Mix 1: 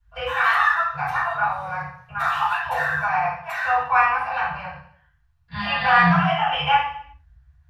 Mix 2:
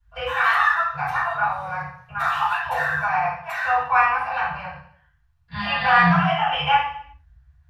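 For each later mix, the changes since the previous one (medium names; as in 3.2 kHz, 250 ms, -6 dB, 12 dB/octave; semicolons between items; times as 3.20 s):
no change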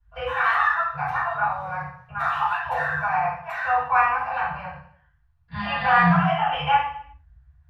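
master: add treble shelf 3 kHz -11.5 dB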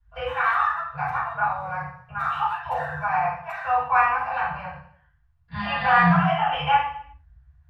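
background: send -8.5 dB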